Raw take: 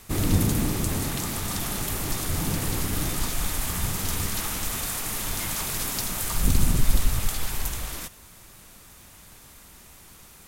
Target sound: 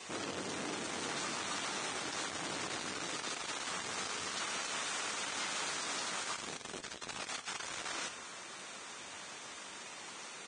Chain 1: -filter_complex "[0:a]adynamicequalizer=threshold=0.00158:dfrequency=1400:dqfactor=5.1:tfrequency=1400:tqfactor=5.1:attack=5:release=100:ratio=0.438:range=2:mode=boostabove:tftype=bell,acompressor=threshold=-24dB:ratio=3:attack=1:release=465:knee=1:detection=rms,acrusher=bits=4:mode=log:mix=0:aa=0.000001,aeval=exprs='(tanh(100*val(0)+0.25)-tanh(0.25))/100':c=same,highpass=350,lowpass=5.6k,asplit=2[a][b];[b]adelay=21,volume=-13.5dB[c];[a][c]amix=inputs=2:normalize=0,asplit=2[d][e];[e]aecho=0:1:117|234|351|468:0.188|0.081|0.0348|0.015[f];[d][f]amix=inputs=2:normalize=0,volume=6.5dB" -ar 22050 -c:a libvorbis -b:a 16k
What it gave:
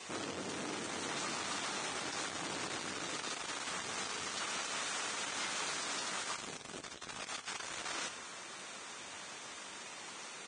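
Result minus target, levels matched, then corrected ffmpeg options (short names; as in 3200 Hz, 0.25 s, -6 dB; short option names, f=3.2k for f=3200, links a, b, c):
compressor: peak gain reduction +11.5 dB
-filter_complex "[0:a]adynamicequalizer=threshold=0.00158:dfrequency=1400:dqfactor=5.1:tfrequency=1400:tqfactor=5.1:attack=5:release=100:ratio=0.438:range=2:mode=boostabove:tftype=bell,acrusher=bits=4:mode=log:mix=0:aa=0.000001,aeval=exprs='(tanh(100*val(0)+0.25)-tanh(0.25))/100':c=same,highpass=350,lowpass=5.6k,asplit=2[a][b];[b]adelay=21,volume=-13.5dB[c];[a][c]amix=inputs=2:normalize=0,asplit=2[d][e];[e]aecho=0:1:117|234|351|468:0.188|0.081|0.0348|0.015[f];[d][f]amix=inputs=2:normalize=0,volume=6.5dB" -ar 22050 -c:a libvorbis -b:a 16k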